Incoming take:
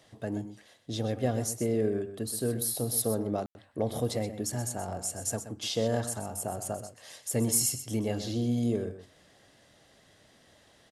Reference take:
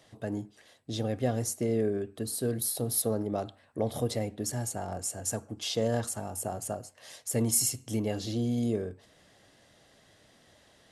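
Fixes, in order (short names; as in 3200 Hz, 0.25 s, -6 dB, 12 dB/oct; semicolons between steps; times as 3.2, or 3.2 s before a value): clip repair -16.5 dBFS; room tone fill 3.46–3.55; inverse comb 0.126 s -11.5 dB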